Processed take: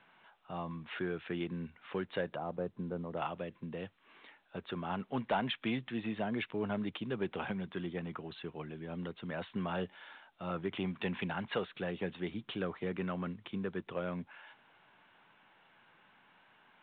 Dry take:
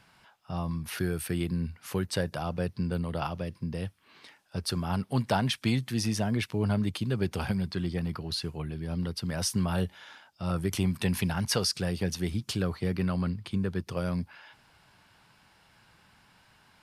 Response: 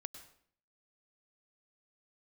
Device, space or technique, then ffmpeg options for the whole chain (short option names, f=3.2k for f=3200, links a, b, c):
telephone: -filter_complex "[0:a]asettb=1/sr,asplit=3[a][b][c];[a]atrim=end=2.364[d];[b]atrim=start=2.36:end=3.17,asetpts=PTS-STARTPTS,afade=t=in:d=0.004:c=qsin,afade=t=out:st=0.806:d=0.004:c=qsin,lowpass=1k[e];[c]atrim=start=3.166[f];[d][e]acrossfade=d=0.004:c1=hsin:c2=qsin[g];[g][f]acrossfade=d=0.004:c1=qsin:c2=hsin,highpass=250,lowpass=3.5k,asoftclip=type=tanh:threshold=-20dB,volume=-2.5dB" -ar 8000 -c:a pcm_mulaw